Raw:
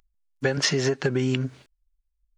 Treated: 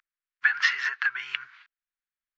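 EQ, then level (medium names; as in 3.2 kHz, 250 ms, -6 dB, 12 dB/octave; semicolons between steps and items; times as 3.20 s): Gaussian low-pass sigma 2.2 samples; inverse Chebyshev high-pass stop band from 590 Hz, stop band 40 dB; peaking EQ 1.6 kHz +10.5 dB 1.4 oct; 0.0 dB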